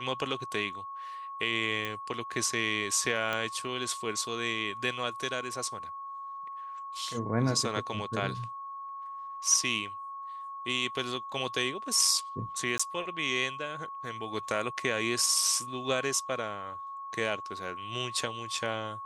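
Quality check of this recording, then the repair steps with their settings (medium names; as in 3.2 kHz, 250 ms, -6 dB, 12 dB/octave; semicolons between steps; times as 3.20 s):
whine 1.1 kHz -38 dBFS
1.85 s: pop -19 dBFS
3.33 s: pop -17 dBFS
12.78–12.79 s: dropout 15 ms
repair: de-click; band-stop 1.1 kHz, Q 30; interpolate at 12.78 s, 15 ms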